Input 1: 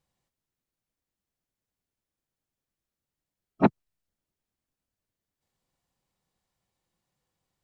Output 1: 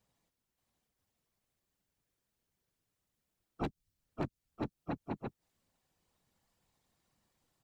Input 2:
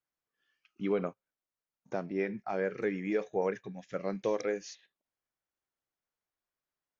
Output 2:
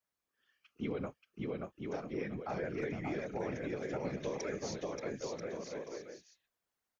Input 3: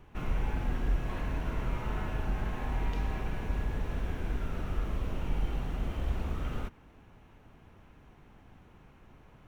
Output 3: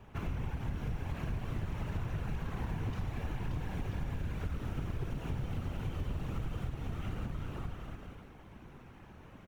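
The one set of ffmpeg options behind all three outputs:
-filter_complex "[0:a]aecho=1:1:580|986|1270|1469|1608:0.631|0.398|0.251|0.158|0.1,acrossover=split=160|3000[a][b][c];[b]acompressor=threshold=-42dB:ratio=2[d];[a][d][c]amix=inputs=3:normalize=0,afftfilt=real='hypot(re,im)*cos(2*PI*random(0))':imag='hypot(re,im)*sin(2*PI*random(1))':win_size=512:overlap=0.75,aeval=exprs='0.0376*(abs(mod(val(0)/0.0376+3,4)-2)-1)':c=same,acompressor=threshold=-40dB:ratio=6,volume=7.5dB"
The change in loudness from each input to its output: -16.5, -5.5, -3.5 LU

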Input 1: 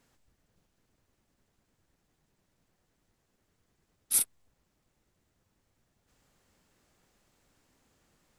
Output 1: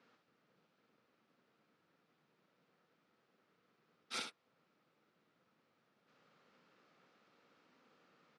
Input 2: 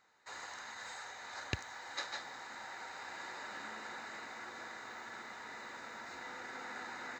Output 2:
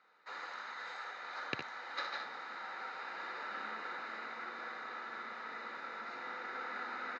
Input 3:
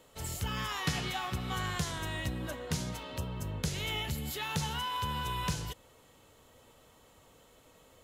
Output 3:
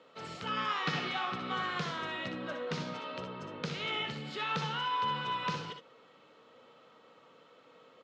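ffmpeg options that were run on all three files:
-filter_complex "[0:a]highpass=f=160:w=0.5412,highpass=f=160:w=1.3066,equalizer=f=490:t=q:w=4:g=5,equalizer=f=1.3k:t=q:w=4:g=9,equalizer=f=2.4k:t=q:w=4:g=3,lowpass=f=4.7k:w=0.5412,lowpass=f=4.7k:w=1.3066,asplit=2[a][b];[b]aecho=0:1:61|74:0.398|0.266[c];[a][c]amix=inputs=2:normalize=0,volume=-1.5dB"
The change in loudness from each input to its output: -16.0, +2.5, 0.0 LU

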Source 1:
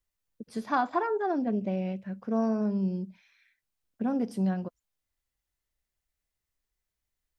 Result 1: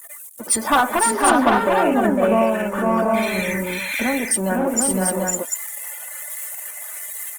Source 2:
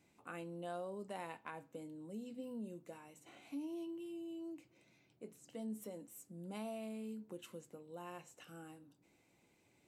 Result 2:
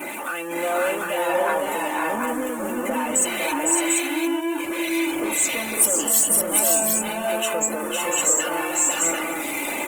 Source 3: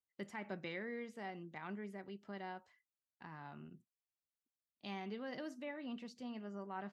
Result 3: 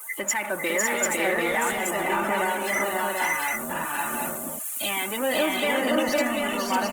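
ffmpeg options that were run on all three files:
-filter_complex "[0:a]aeval=exprs='val(0)+0.5*0.0106*sgn(val(0))':c=same,highpass=560,aemphasis=mode=reproduction:type=bsi,afftdn=nr=24:nf=-52,highshelf=f=3.2k:g=11,aecho=1:1:3.4:0.46,asplit=2[a][b];[b]acompressor=threshold=-46dB:ratio=4,volume=1dB[c];[a][c]amix=inputs=2:normalize=0,aexciter=amount=9.8:drive=9.3:freq=7.4k,aeval=exprs='0.299*sin(PI/2*2.82*val(0)/0.299)':c=same,acrossover=split=1800[d][e];[d]aeval=exprs='val(0)*(1-0.5/2+0.5/2*cos(2*PI*1.3*n/s))':c=same[f];[e]aeval=exprs='val(0)*(1-0.5/2-0.5/2*cos(2*PI*1.3*n/s))':c=same[g];[f][g]amix=inputs=2:normalize=0,aecho=1:1:505|553|694|743:0.708|0.668|0.1|0.708,volume=1dB" -ar 48000 -c:a libopus -b:a 20k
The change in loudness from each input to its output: +10.5, +27.0, +22.5 LU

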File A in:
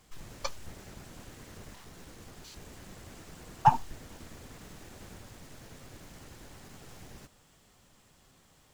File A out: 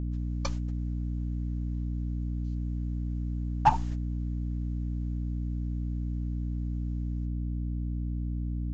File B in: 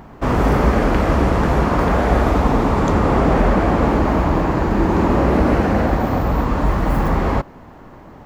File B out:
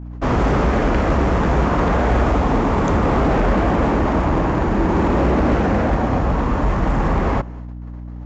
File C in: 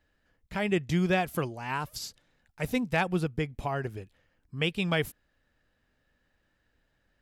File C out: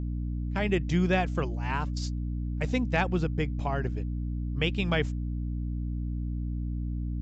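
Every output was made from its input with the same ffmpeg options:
-af "agate=range=-19dB:threshold=-38dB:ratio=16:detection=peak,adynamicequalizer=threshold=0.00282:dfrequency=4300:dqfactor=2.3:tfrequency=4300:tqfactor=2.3:attack=5:release=100:ratio=0.375:range=2.5:mode=cutabove:tftype=bell,aresample=16000,asoftclip=type=hard:threshold=-12dB,aresample=44100,aeval=exprs='val(0)+0.0316*(sin(2*PI*60*n/s)+sin(2*PI*2*60*n/s)/2+sin(2*PI*3*60*n/s)/3+sin(2*PI*4*60*n/s)/4+sin(2*PI*5*60*n/s)/5)':c=same"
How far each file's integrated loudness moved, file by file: +0.5, -1.0, 0.0 LU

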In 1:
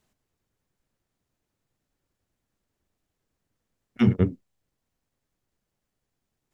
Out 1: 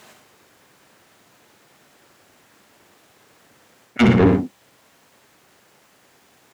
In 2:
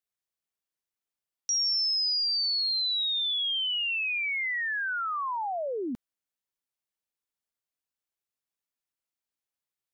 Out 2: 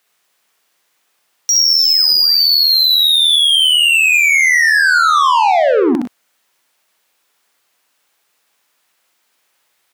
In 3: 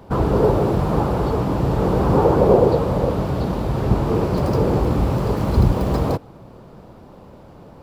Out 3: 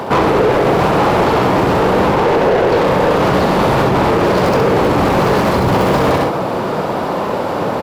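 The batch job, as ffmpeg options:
-filter_complex "[0:a]highpass=85,equalizer=f=5.5k:t=o:w=2:g=-3,areverse,acompressor=threshold=-26dB:ratio=6,areverse,asplit=2[a][b];[b]highpass=f=720:p=1,volume=21dB,asoftclip=type=tanh:threshold=-20dB[c];[a][c]amix=inputs=2:normalize=0,lowpass=f=5.8k:p=1,volume=-6dB,asplit=2[d][e];[e]asoftclip=type=tanh:threshold=-34dB,volume=-11.5dB[f];[d][f]amix=inputs=2:normalize=0,aecho=1:1:65|102|122:0.562|0.251|0.251,alimiter=level_in=18.5dB:limit=-1dB:release=50:level=0:latency=1,volume=-4.5dB"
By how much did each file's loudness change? +6.5, +17.0, +5.5 LU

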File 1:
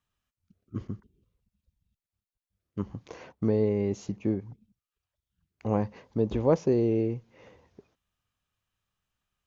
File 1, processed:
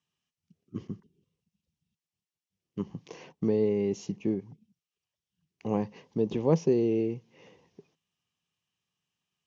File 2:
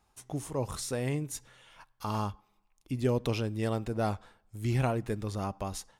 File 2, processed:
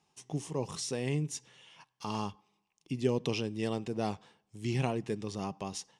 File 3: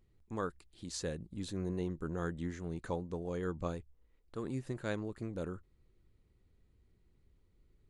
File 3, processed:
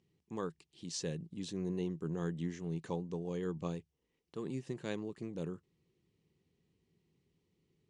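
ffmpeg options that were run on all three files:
-af "highpass=150,equalizer=f=160:t=q:w=4:g=9,equalizer=f=400:t=q:w=4:g=3,equalizer=f=600:t=q:w=4:g=-5,equalizer=f=1.4k:t=q:w=4:g=-9,equalizer=f=2.9k:t=q:w=4:g=6,equalizer=f=5.6k:t=q:w=4:g=6,lowpass=f=9.2k:w=0.5412,lowpass=f=9.2k:w=1.3066,volume=-1.5dB"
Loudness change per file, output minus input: -0.5, -2.0, -0.5 LU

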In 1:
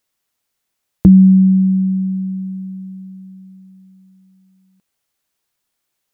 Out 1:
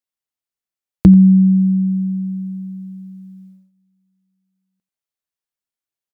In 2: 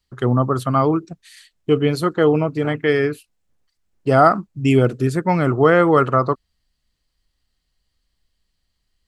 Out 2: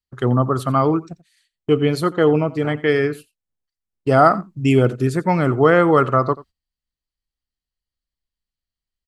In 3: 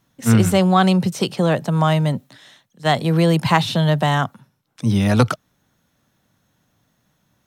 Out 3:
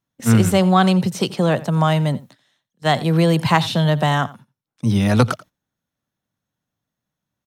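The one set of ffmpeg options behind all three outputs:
-filter_complex "[0:a]agate=range=-17dB:threshold=-40dB:ratio=16:detection=peak,asplit=2[a][b];[b]aecho=0:1:87:0.106[c];[a][c]amix=inputs=2:normalize=0"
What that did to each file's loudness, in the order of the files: -0.5, 0.0, 0.0 LU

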